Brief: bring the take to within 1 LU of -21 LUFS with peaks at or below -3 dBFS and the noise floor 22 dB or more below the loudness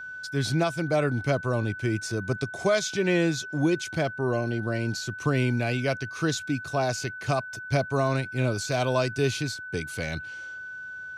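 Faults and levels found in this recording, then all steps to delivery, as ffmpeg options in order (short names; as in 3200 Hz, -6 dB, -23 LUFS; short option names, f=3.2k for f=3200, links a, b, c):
steady tone 1500 Hz; tone level -36 dBFS; loudness -27.5 LUFS; peak -12.5 dBFS; loudness target -21.0 LUFS
-> -af "bandreject=f=1.5k:w=30"
-af "volume=6.5dB"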